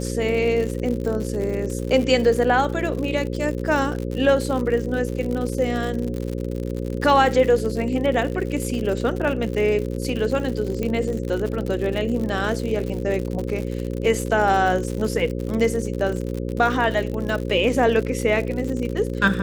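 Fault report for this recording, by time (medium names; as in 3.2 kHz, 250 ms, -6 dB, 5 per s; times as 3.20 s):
buzz 60 Hz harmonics 9 -27 dBFS
crackle 89 per s -27 dBFS
10.83 s: pop -14 dBFS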